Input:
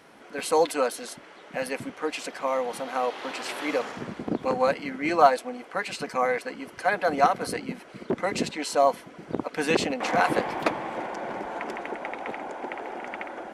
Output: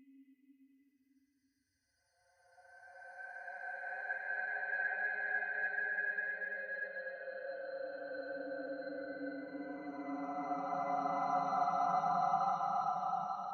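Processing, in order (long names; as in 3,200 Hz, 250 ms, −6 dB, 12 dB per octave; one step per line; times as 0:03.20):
spectral dynamics exaggerated over time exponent 3
extreme stretch with random phases 20×, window 0.25 s, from 0:06.65
level −6 dB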